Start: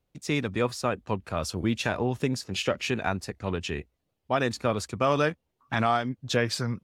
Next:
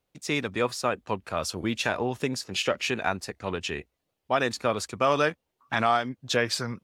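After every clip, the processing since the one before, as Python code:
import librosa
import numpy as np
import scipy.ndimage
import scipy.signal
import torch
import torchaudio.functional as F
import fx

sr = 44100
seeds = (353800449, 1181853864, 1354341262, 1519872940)

y = fx.low_shelf(x, sr, hz=250.0, db=-10.0)
y = y * librosa.db_to_amplitude(2.5)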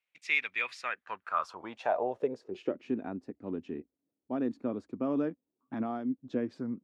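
y = fx.filter_sweep_bandpass(x, sr, from_hz=2300.0, to_hz=270.0, start_s=0.72, end_s=2.87, q=4.0)
y = y * librosa.db_to_amplitude(5.0)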